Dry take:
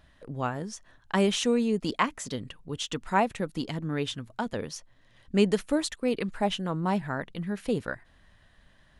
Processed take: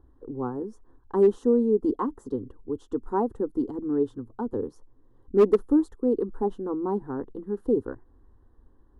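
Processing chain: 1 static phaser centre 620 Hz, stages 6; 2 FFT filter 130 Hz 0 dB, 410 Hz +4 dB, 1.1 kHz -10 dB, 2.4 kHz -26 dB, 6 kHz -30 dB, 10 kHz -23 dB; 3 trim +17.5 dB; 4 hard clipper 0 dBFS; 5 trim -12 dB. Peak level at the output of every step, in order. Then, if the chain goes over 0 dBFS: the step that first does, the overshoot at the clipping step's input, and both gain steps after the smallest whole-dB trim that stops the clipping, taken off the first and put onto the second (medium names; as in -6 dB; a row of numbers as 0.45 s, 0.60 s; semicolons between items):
-14.5 dBFS, -12.0 dBFS, +5.5 dBFS, 0.0 dBFS, -12.0 dBFS; step 3, 5.5 dB; step 3 +11.5 dB, step 5 -6 dB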